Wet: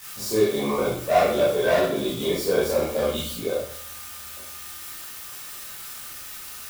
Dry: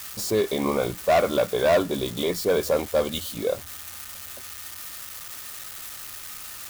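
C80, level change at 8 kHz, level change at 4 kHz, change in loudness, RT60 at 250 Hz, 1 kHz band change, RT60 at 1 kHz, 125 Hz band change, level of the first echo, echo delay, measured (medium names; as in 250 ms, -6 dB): 6.5 dB, 0.0 dB, 0.0 dB, +1.0 dB, 0.60 s, +1.5 dB, 0.55 s, +0.5 dB, no echo, no echo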